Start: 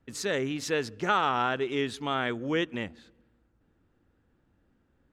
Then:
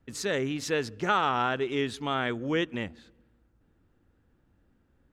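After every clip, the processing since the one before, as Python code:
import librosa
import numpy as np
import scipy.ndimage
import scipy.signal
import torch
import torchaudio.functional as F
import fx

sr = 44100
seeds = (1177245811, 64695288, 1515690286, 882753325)

y = fx.low_shelf(x, sr, hz=110.0, db=4.5)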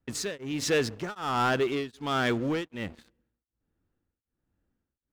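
y = fx.leveller(x, sr, passes=3)
y = y * np.abs(np.cos(np.pi * 1.3 * np.arange(len(y)) / sr))
y = F.gain(torch.from_numpy(y), -5.0).numpy()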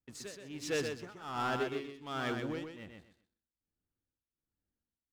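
y = fx.echo_feedback(x, sr, ms=125, feedback_pct=22, wet_db=-4)
y = fx.upward_expand(y, sr, threshold_db=-34.0, expansion=1.5)
y = F.gain(torch.from_numpy(y), -8.5).numpy()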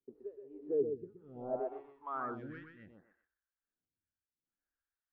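y = 10.0 ** (-28.5 / 20.0) * np.tanh(x / 10.0 ** (-28.5 / 20.0))
y = fx.filter_sweep_lowpass(y, sr, from_hz=410.0, to_hz=1600.0, start_s=1.14, end_s=2.52, q=5.9)
y = fx.stagger_phaser(y, sr, hz=0.67)
y = F.gain(torch.from_numpy(y), -5.5).numpy()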